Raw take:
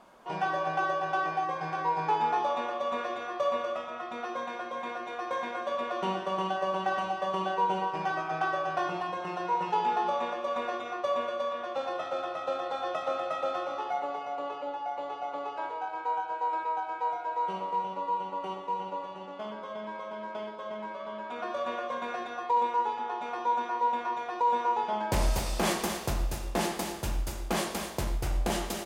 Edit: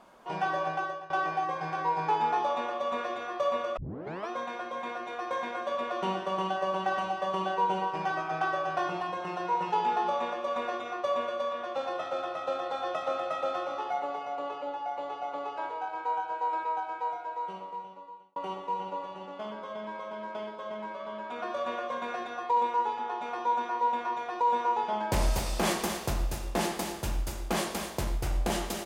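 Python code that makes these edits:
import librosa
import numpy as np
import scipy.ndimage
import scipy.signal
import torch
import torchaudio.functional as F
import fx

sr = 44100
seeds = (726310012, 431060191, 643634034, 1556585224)

y = fx.edit(x, sr, fx.fade_out_to(start_s=0.64, length_s=0.46, floor_db=-18.0),
    fx.tape_start(start_s=3.77, length_s=0.52),
    fx.fade_out_span(start_s=16.74, length_s=1.62), tone=tone)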